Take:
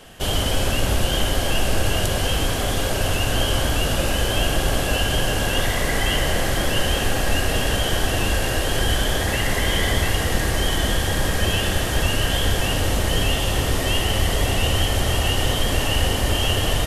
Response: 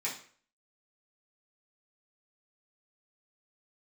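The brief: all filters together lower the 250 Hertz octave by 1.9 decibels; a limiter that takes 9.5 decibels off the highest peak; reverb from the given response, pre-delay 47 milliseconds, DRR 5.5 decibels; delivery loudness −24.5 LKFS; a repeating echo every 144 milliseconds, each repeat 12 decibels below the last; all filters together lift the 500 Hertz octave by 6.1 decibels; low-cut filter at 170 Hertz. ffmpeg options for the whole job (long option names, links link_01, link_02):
-filter_complex "[0:a]highpass=170,equalizer=frequency=250:width_type=o:gain=-4.5,equalizer=frequency=500:width_type=o:gain=8.5,alimiter=limit=-15.5dB:level=0:latency=1,aecho=1:1:144|288|432:0.251|0.0628|0.0157,asplit=2[link_01][link_02];[1:a]atrim=start_sample=2205,adelay=47[link_03];[link_02][link_03]afir=irnorm=-1:irlink=0,volume=-10dB[link_04];[link_01][link_04]amix=inputs=2:normalize=0,volume=-1.5dB"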